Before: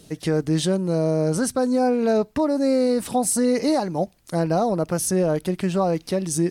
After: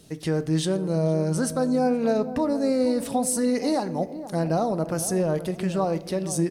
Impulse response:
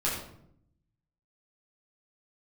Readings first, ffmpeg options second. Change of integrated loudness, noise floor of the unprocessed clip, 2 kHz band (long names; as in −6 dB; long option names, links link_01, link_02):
−3.0 dB, −53 dBFS, −3.0 dB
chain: -filter_complex "[0:a]asplit=2[link_01][link_02];[link_02]adelay=473,lowpass=frequency=800:poles=1,volume=-11.5dB,asplit=2[link_03][link_04];[link_04]adelay=473,lowpass=frequency=800:poles=1,volume=0.38,asplit=2[link_05][link_06];[link_06]adelay=473,lowpass=frequency=800:poles=1,volume=0.38,asplit=2[link_07][link_08];[link_08]adelay=473,lowpass=frequency=800:poles=1,volume=0.38[link_09];[link_01][link_03][link_05][link_07][link_09]amix=inputs=5:normalize=0,asplit=2[link_10][link_11];[1:a]atrim=start_sample=2205[link_12];[link_11][link_12]afir=irnorm=-1:irlink=0,volume=-20.5dB[link_13];[link_10][link_13]amix=inputs=2:normalize=0,volume=-4dB"